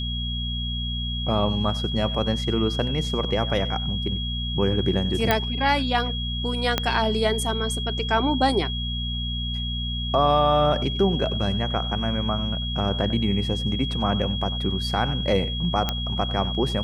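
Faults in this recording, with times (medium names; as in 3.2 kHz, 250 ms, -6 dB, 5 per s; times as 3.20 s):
hum 60 Hz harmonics 4 -29 dBFS
whine 3.3 kHz -30 dBFS
5.31 s: pop -5 dBFS
6.78 s: pop -6 dBFS
15.89 s: pop -9 dBFS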